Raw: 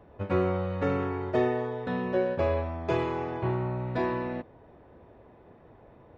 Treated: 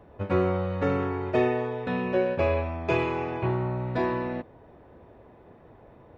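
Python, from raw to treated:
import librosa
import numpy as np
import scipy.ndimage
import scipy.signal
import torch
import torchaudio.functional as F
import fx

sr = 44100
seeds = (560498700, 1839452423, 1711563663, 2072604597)

y = fx.peak_eq(x, sr, hz=2500.0, db=9.5, octaves=0.26, at=(1.25, 3.46))
y = y * 10.0 ** (2.0 / 20.0)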